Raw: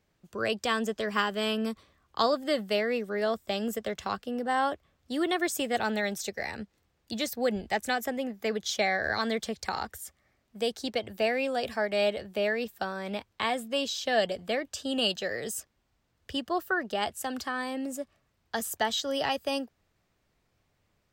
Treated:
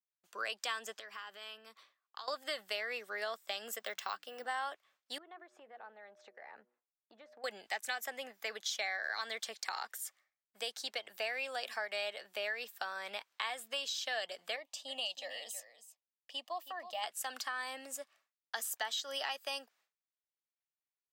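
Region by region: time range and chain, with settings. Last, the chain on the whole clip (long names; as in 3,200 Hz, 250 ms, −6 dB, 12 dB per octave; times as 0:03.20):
0:00.99–0:02.28: parametric band 9,000 Hz −6 dB 0.91 octaves + downward compressor 16 to 1, threshold −39 dBFS
0:03.79–0:04.45: low-pass filter 11,000 Hz + mains-hum notches 60/120/180/240/300 Hz + bad sample-rate conversion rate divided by 2×, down none, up hold
0:05.18–0:07.44: low-pass filter 1,000 Hz + hum removal 121.7 Hz, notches 5 + downward compressor 12 to 1, threshold −40 dBFS
0:14.56–0:17.04: bass and treble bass −8 dB, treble −8 dB + phaser with its sweep stopped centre 400 Hz, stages 6 + single-tap delay 321 ms −13.5 dB
whole clip: downward expander −56 dBFS; high-pass filter 980 Hz 12 dB per octave; downward compressor 3 to 1, threshold −36 dBFS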